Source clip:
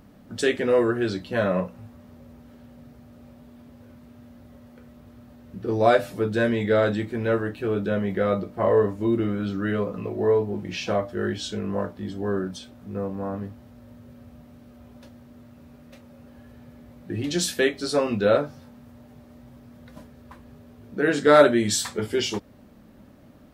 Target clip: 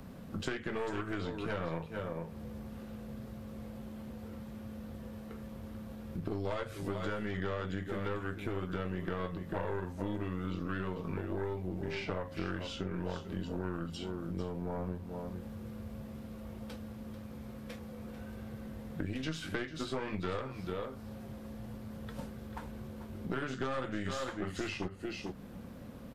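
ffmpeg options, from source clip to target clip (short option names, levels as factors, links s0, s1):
-filter_complex "[0:a]asetrate=39690,aresample=44100,asplit=2[s0][s1];[s1]aecho=0:1:441:0.237[s2];[s0][s2]amix=inputs=2:normalize=0,acrossover=split=140|1000|2400[s3][s4][s5][s6];[s3]acompressor=threshold=0.0178:ratio=4[s7];[s4]acompressor=threshold=0.0224:ratio=4[s8];[s5]acompressor=threshold=0.02:ratio=4[s9];[s6]acompressor=threshold=0.00398:ratio=4[s10];[s7][s8][s9][s10]amix=inputs=4:normalize=0,aeval=exprs='0.158*(cos(1*acos(clip(val(0)/0.158,-1,1)))-cos(1*PI/2))+0.0316*(cos(4*acos(clip(val(0)/0.158,-1,1)))-cos(4*PI/2))':c=same,acompressor=threshold=0.01:ratio=2.5,volume=1.41"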